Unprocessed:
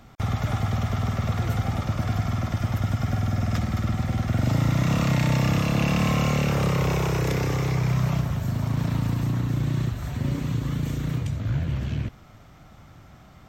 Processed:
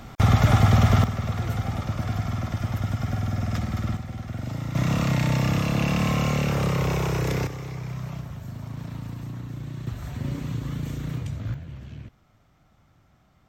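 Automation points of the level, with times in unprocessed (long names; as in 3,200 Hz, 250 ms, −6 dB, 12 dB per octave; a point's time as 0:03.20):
+8 dB
from 0:01.04 −2 dB
from 0:03.97 −9 dB
from 0:04.75 −1 dB
from 0:07.47 −10 dB
from 0:09.87 −3.5 dB
from 0:11.54 −12 dB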